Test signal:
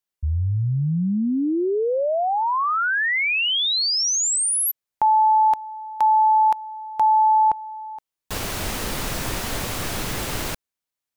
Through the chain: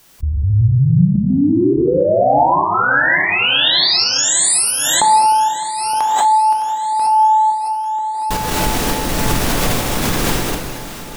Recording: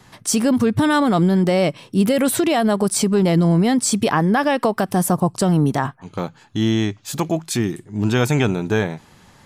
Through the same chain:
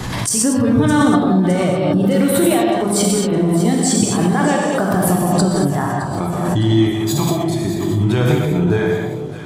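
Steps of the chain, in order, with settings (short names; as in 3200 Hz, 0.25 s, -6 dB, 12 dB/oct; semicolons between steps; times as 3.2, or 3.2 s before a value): spectral noise reduction 9 dB; low shelf 400 Hz +6.5 dB; compressor 6:1, threshold -22 dBFS; step gate "xx.xxxxx.x" 104 bpm -12 dB; echo with dull and thin repeats by turns 0.306 s, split 850 Hz, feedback 77%, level -10 dB; non-linear reverb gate 0.26 s flat, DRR -2 dB; backwards sustainer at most 26 dB/s; gain +5.5 dB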